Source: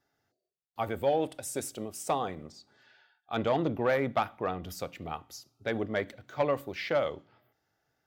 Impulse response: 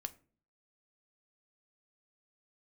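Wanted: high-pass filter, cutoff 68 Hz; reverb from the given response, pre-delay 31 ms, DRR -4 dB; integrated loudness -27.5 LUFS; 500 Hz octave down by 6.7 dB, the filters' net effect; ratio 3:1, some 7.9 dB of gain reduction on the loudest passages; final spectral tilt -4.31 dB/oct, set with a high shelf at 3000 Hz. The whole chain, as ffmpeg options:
-filter_complex "[0:a]highpass=68,equalizer=f=500:t=o:g=-8,highshelf=f=3k:g=-3.5,acompressor=threshold=-38dB:ratio=3,asplit=2[a][b];[1:a]atrim=start_sample=2205,adelay=31[c];[b][c]afir=irnorm=-1:irlink=0,volume=6.5dB[d];[a][d]amix=inputs=2:normalize=0,volume=9.5dB"

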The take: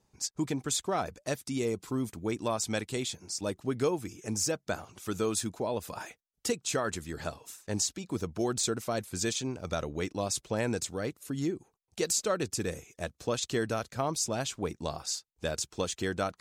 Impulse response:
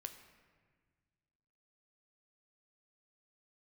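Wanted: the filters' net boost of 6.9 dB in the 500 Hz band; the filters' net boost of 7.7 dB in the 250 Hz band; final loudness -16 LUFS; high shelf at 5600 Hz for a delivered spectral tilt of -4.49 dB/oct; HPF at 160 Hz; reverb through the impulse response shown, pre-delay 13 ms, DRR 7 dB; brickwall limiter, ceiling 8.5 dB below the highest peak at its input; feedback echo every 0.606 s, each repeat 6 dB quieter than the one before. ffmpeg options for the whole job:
-filter_complex "[0:a]highpass=160,equalizer=f=250:t=o:g=8.5,equalizer=f=500:t=o:g=6,highshelf=f=5.6k:g=-7.5,alimiter=limit=-19.5dB:level=0:latency=1,aecho=1:1:606|1212|1818|2424|3030|3636:0.501|0.251|0.125|0.0626|0.0313|0.0157,asplit=2[a][b];[1:a]atrim=start_sample=2205,adelay=13[c];[b][c]afir=irnorm=-1:irlink=0,volume=-3dB[d];[a][d]amix=inputs=2:normalize=0,volume=13.5dB"

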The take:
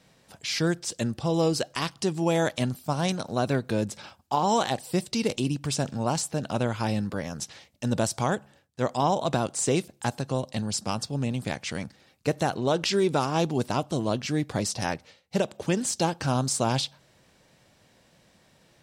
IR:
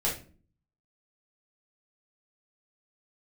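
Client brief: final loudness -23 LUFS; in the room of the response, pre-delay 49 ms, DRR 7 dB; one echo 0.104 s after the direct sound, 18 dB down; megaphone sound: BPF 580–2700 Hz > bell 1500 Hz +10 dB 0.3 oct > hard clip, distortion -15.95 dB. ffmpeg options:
-filter_complex "[0:a]aecho=1:1:104:0.126,asplit=2[a][b];[1:a]atrim=start_sample=2205,adelay=49[c];[b][c]afir=irnorm=-1:irlink=0,volume=-14.5dB[d];[a][d]amix=inputs=2:normalize=0,highpass=580,lowpass=2.7k,equalizer=f=1.5k:t=o:w=0.3:g=10,asoftclip=type=hard:threshold=-20dB,volume=8.5dB"

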